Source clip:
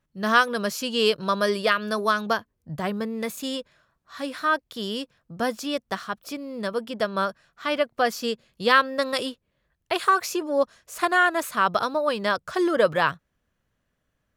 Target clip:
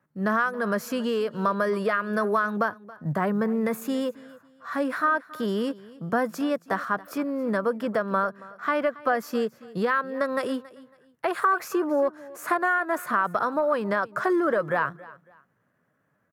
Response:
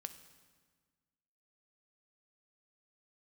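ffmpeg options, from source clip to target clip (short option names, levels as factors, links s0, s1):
-filter_complex "[0:a]highpass=f=120:w=0.5412,highpass=f=120:w=1.3066,equalizer=f=14000:w=0.66:g=7,acrossover=split=570|920[s0][s1][s2];[s1]asoftclip=type=hard:threshold=0.0531[s3];[s0][s3][s2]amix=inputs=3:normalize=0,acompressor=threshold=0.0501:ratio=10,asplit=2[s4][s5];[s5]alimiter=level_in=1.19:limit=0.0631:level=0:latency=1:release=11,volume=0.841,volume=0.75[s6];[s4][s6]amix=inputs=2:normalize=0,acrusher=bits=9:mode=log:mix=0:aa=0.000001,atempo=0.88,highshelf=f=2300:t=q:w=1.5:g=-12,aecho=1:1:276|552:0.1|0.028,volume=1.19"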